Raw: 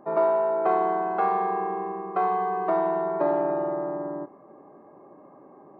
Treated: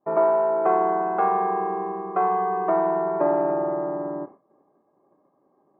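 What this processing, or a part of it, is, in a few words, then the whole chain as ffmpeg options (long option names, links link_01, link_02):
hearing-loss simulation: -af "lowpass=2100,agate=range=-33dB:threshold=-38dB:ratio=3:detection=peak,volume=2.5dB"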